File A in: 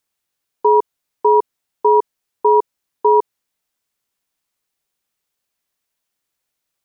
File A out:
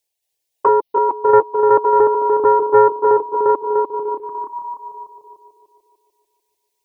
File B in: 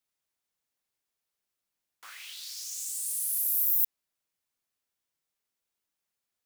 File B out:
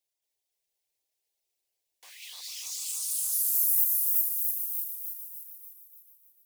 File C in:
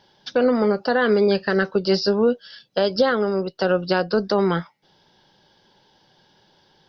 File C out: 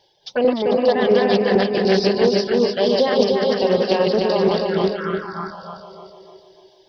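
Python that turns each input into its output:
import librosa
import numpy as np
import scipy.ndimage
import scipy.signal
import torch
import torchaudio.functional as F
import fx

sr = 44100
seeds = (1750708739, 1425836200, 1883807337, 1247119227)

p1 = fx.reverse_delay_fb(x, sr, ms=222, feedback_pct=56, wet_db=-1.0)
p2 = fx.low_shelf(p1, sr, hz=160.0, db=-5.5)
p3 = fx.dereverb_blind(p2, sr, rt60_s=1.2)
p4 = p3 + 10.0 ** (-10.5 / 20.0) * np.pad(p3, (int(623 * sr / 1000.0), 0))[:len(p3)]
p5 = fx.dynamic_eq(p4, sr, hz=1300.0, q=0.8, threshold_db=-29.0, ratio=4.0, max_db=6)
p6 = p5 + fx.echo_feedback(p5, sr, ms=297, feedback_pct=50, wet_db=-4, dry=0)
p7 = fx.env_phaser(p6, sr, low_hz=220.0, high_hz=1400.0, full_db=-14.5)
p8 = fx.doppler_dist(p7, sr, depth_ms=0.14)
y = p8 * 10.0 ** (1.5 / 20.0)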